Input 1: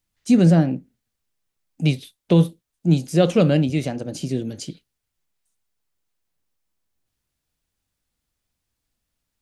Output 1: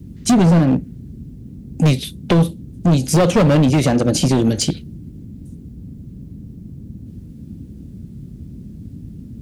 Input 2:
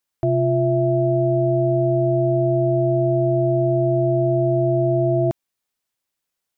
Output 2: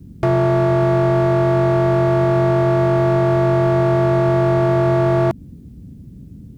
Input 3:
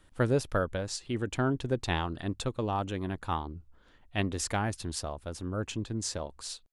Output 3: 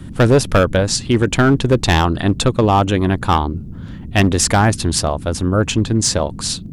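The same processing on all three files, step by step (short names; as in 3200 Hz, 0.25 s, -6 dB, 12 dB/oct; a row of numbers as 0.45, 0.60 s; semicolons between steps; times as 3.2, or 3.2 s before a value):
compressor 4:1, threshold -21 dBFS; hard clip -24.5 dBFS; band noise 43–240 Hz -49 dBFS; match loudness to -16 LUFS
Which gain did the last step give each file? +15.0, +11.5, +18.0 dB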